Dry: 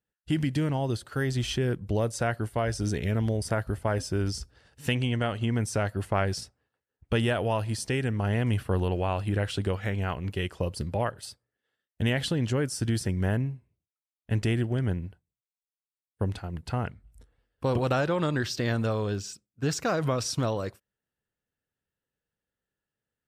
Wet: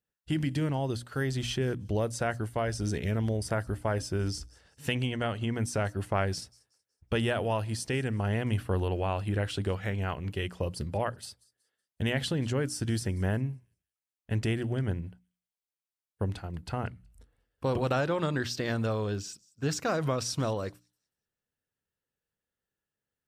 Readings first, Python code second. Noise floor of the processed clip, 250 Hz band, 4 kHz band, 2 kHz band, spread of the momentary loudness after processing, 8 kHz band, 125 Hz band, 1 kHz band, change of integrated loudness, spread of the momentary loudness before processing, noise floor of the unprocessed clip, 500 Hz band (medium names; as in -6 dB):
under -85 dBFS, -3.0 dB, -2.0 dB, -2.0 dB, 7 LU, -2.0 dB, -3.0 dB, -2.0 dB, -2.5 dB, 6 LU, under -85 dBFS, -2.0 dB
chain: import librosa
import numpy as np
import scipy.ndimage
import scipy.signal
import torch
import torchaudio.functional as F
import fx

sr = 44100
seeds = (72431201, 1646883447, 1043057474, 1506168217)

y = fx.hum_notches(x, sr, base_hz=60, count=5)
y = fx.echo_wet_highpass(y, sr, ms=186, feedback_pct=31, hz=5600.0, wet_db=-20.0)
y = F.gain(torch.from_numpy(y), -2.0).numpy()